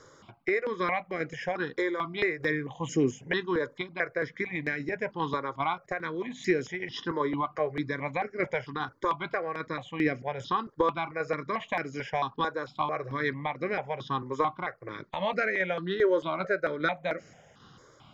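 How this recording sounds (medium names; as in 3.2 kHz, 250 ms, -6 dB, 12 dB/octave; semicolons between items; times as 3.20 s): tremolo saw down 2.5 Hz, depth 40%; notches that jump at a steady rate 4.5 Hz 730–3500 Hz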